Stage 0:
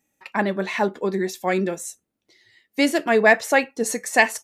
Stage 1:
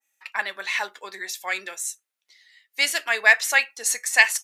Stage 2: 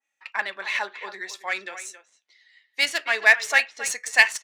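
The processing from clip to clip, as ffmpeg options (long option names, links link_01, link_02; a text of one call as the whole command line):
ffmpeg -i in.wav -af "highpass=1400,adynamicequalizer=threshold=0.0282:dfrequency=1900:dqfactor=0.7:tfrequency=1900:tqfactor=0.7:attack=5:release=100:ratio=0.375:range=2:mode=boostabove:tftype=highshelf,volume=2dB" out.wav
ffmpeg -i in.wav -filter_complex "[0:a]adynamicsmooth=sensitivity=1.5:basefreq=4700,asplit=2[link_01][link_02];[link_02]adelay=270,highpass=300,lowpass=3400,asoftclip=type=hard:threshold=-11dB,volume=-12dB[link_03];[link_01][link_03]amix=inputs=2:normalize=0" out.wav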